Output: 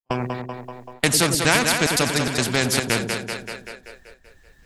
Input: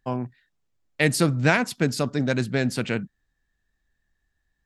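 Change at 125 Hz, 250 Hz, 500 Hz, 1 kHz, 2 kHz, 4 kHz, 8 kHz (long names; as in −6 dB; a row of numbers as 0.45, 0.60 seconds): −1.0, 0.0, +2.0, +5.5, +4.5, +11.0, +12.0 decibels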